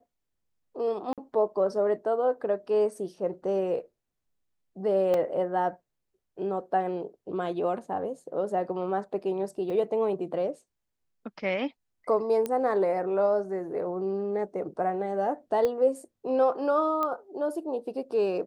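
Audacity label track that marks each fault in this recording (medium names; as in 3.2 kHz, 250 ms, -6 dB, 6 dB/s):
1.130000	1.180000	dropout 47 ms
5.140000	5.140000	dropout 2.6 ms
9.700000	9.700000	dropout 2.7 ms
12.460000	12.460000	pop -17 dBFS
15.650000	15.650000	pop -16 dBFS
17.030000	17.030000	pop -17 dBFS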